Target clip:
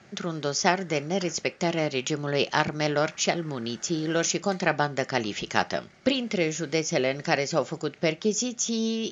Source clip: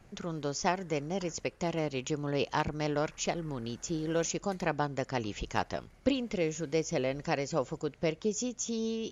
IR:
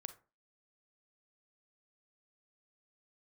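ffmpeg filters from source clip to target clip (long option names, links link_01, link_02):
-filter_complex "[0:a]highpass=210,equalizer=frequency=280:width_type=q:width=4:gain=-8,equalizer=frequency=480:width_type=q:width=4:gain=-8,equalizer=frequency=720:width_type=q:width=4:gain=-3,equalizer=frequency=1000:width_type=q:width=4:gain=-9,equalizer=frequency=2600:width_type=q:width=4:gain=-3,lowpass=frequency=6400:width=0.5412,lowpass=frequency=6400:width=1.3066,asplit=2[link_01][link_02];[1:a]atrim=start_sample=2205,asetrate=74970,aresample=44100[link_03];[link_02][link_03]afir=irnorm=-1:irlink=0,volume=7dB[link_04];[link_01][link_04]amix=inputs=2:normalize=0,volume=6.5dB"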